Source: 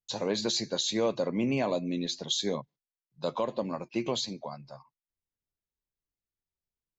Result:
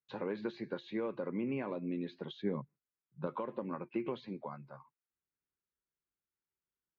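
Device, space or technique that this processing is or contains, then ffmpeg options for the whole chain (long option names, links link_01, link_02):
bass amplifier: -filter_complex "[0:a]acompressor=threshold=-32dB:ratio=4,highpass=60,equalizer=frequency=74:width_type=q:width=4:gain=-7,equalizer=frequency=110:width_type=q:width=4:gain=-5,equalizer=frequency=370:width_type=q:width=4:gain=4,equalizer=frequency=670:width_type=q:width=4:gain=-9,equalizer=frequency=1400:width_type=q:width=4:gain=6,lowpass=frequency=2400:width=0.5412,lowpass=frequency=2400:width=1.3066,asettb=1/sr,asplit=3[link_01][link_02][link_03];[link_01]atrim=end=2.424[link_04];[link_02]atrim=start=2.42:end=3.27,asetpts=PTS-STARTPTS,afade=type=in:duration=0.004:curve=qsin,afade=type=out:start_time=0.846:duration=0.004:curve=qsin,bass=frequency=250:gain=9,treble=frequency=4000:gain=-15[link_05];[link_03]atrim=start=3.266[link_06];[link_04][link_05]acrossfade=duration=0.004:curve1=hsin:curve2=qsin[link_07];[link_07][link_06]acrossfade=duration=0.004:curve1=qsin:curve2=hsin,volume=-2dB"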